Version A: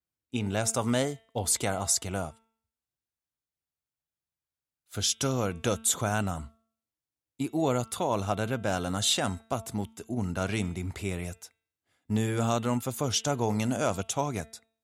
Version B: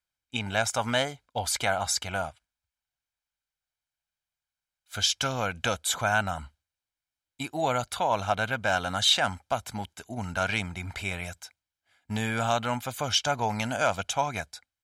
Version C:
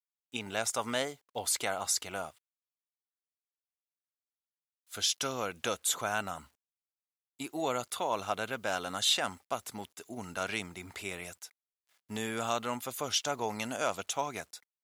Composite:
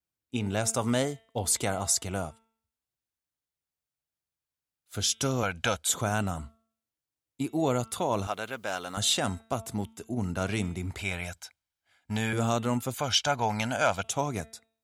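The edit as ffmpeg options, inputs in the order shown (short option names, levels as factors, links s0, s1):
-filter_complex "[1:a]asplit=3[s0][s1][s2];[0:a]asplit=5[s3][s4][s5][s6][s7];[s3]atrim=end=5.432[s8];[s0]atrim=start=5.428:end=5.892[s9];[s4]atrim=start=5.888:end=8.272[s10];[2:a]atrim=start=8.268:end=8.972[s11];[s5]atrim=start=8.968:end=10.992[s12];[s1]atrim=start=10.988:end=12.332[s13];[s6]atrim=start=12.328:end=12.942[s14];[s2]atrim=start=12.938:end=14.042[s15];[s7]atrim=start=14.038[s16];[s8][s9]acrossfade=d=0.004:c1=hsin:c2=hsin[s17];[s17][s10]acrossfade=d=0.004:c1=hsin:c2=hsin[s18];[s18][s11]acrossfade=d=0.004:c1=hsin:c2=hsin[s19];[s19][s12]acrossfade=d=0.004:c1=hsin:c2=hsin[s20];[s20][s13]acrossfade=d=0.004:c1=hsin:c2=hsin[s21];[s21][s14]acrossfade=d=0.004:c1=hsin:c2=hsin[s22];[s22][s15]acrossfade=d=0.004:c1=hsin:c2=hsin[s23];[s23][s16]acrossfade=d=0.004:c1=hsin:c2=hsin"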